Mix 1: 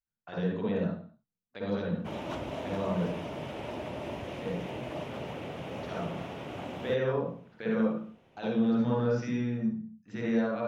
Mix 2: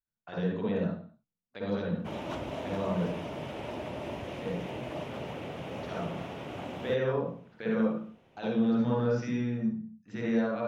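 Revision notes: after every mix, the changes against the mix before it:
nothing changed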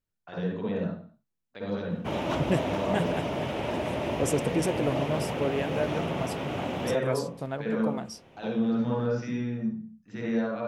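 second voice: unmuted
background +7.5 dB

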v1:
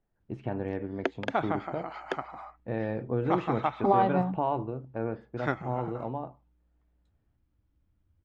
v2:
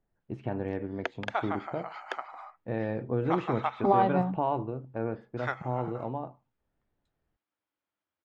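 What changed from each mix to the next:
background: add high-pass filter 700 Hz 12 dB per octave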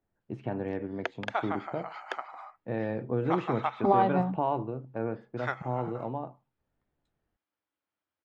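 first voice: add high-pass filter 100 Hz 24 dB per octave

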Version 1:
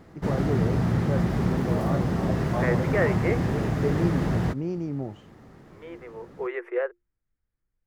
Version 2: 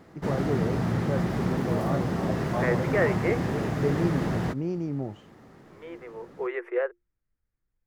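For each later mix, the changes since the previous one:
background: add low-shelf EQ 100 Hz −10.5 dB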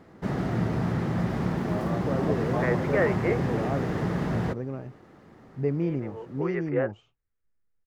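first voice: entry +1.80 s
master: add high-shelf EQ 4,600 Hz −6.5 dB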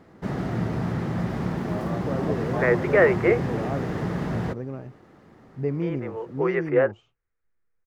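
second voice +7.0 dB

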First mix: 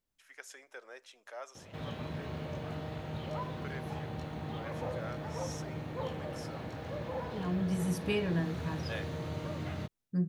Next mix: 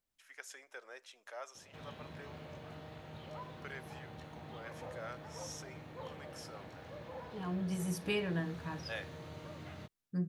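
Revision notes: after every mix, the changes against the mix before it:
background −6.5 dB
master: add low-shelf EQ 490 Hz −5 dB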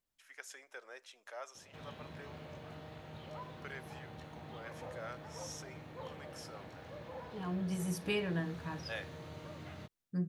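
nothing changed

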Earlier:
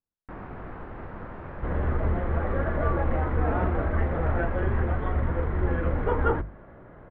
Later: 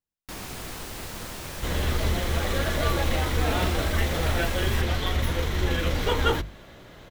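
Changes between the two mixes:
second sound: add high-shelf EQ 5,800 Hz +7.5 dB
master: remove low-pass filter 1,600 Hz 24 dB per octave

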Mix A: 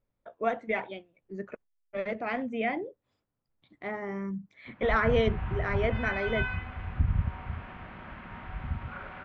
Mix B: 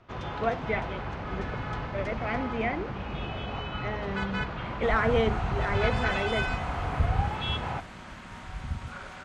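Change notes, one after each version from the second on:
first sound: unmuted
second sound: remove low-pass filter 2,700 Hz 24 dB per octave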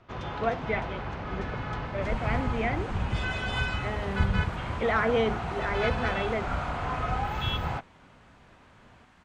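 second sound: entry −2.80 s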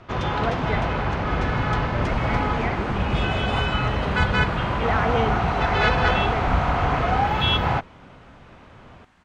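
first sound +11.0 dB

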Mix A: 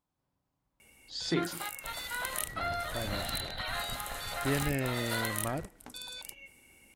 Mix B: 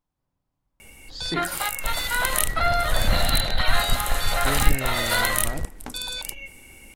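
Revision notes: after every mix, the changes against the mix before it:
background +12.0 dB
master: remove high-pass filter 97 Hz 6 dB per octave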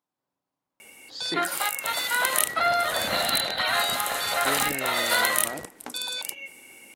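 master: add high-pass filter 280 Hz 12 dB per octave

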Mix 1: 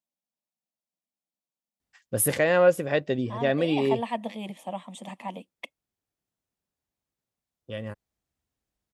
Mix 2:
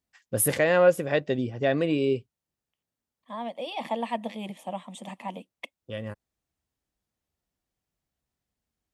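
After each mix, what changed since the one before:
first voice: entry −1.80 s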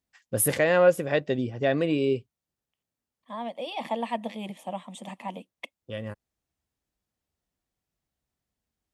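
nothing changed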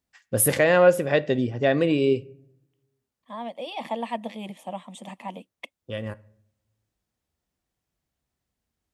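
reverb: on, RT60 0.65 s

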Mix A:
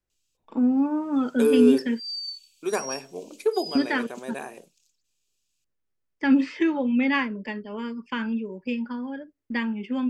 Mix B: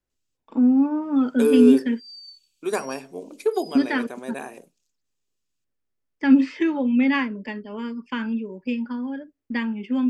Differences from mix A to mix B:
second voice: send +8.5 dB
background −9.5 dB
master: add parametric band 260 Hz +5 dB 0.25 octaves

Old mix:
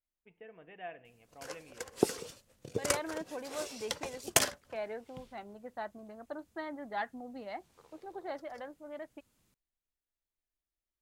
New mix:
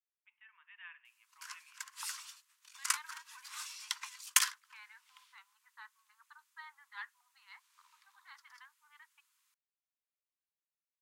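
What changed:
second voice −4.5 dB
master: add Butterworth high-pass 950 Hz 96 dB per octave

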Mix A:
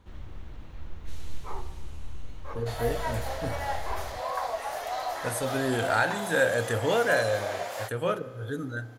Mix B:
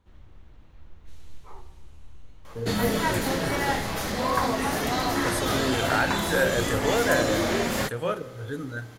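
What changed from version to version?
first sound −8.5 dB
second sound: remove four-pole ladder high-pass 580 Hz, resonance 60%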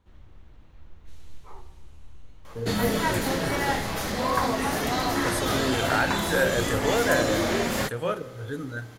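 nothing changed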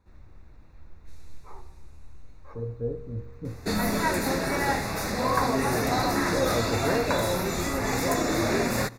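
speech: add Gaussian smoothing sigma 10 samples
second sound: entry +1.00 s
master: add Butterworth band-reject 3,100 Hz, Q 3.4

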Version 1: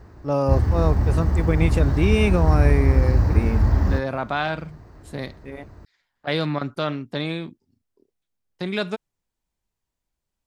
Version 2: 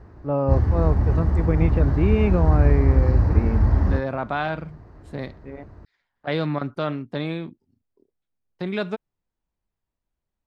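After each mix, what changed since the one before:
first voice: add high-frequency loss of the air 340 metres
master: add low-pass filter 2,000 Hz 6 dB per octave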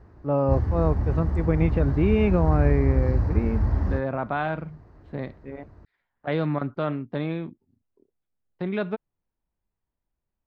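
second voice: add high-frequency loss of the air 320 metres
background −5.0 dB

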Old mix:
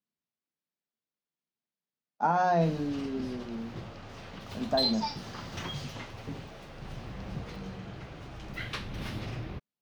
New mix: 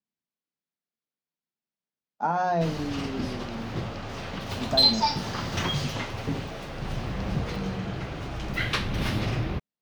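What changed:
background +9.0 dB
reverb: on, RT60 0.90 s

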